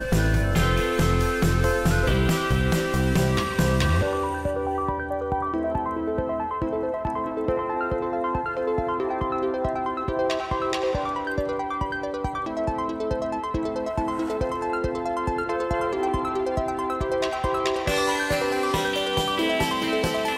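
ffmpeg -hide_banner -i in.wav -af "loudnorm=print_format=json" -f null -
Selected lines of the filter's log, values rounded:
"input_i" : "-24.8",
"input_tp" : "-12.0",
"input_lra" : "4.5",
"input_thresh" : "-34.8",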